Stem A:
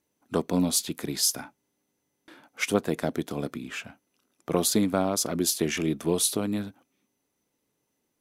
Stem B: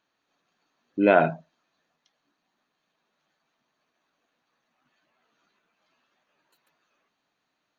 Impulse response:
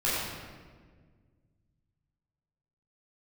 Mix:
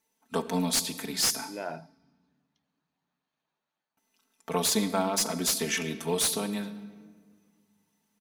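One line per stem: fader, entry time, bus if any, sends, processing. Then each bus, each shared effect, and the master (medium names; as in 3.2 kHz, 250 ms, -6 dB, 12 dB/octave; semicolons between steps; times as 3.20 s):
-5.0 dB, 0.00 s, muted 1.52–3.97 s, send -21 dB, tilt shelf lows -4.5 dB, about 780 Hz; comb 4.5 ms, depth 84%
-9.5 dB, 0.50 s, no send, auto duck -12 dB, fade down 0.90 s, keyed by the first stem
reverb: on, RT60 1.6 s, pre-delay 11 ms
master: peaking EQ 890 Hz +5.5 dB 0.24 oct; slew-rate limiter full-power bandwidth 530 Hz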